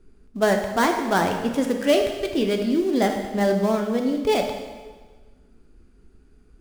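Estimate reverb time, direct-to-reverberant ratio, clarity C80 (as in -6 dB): 1.4 s, 3.5 dB, 7.5 dB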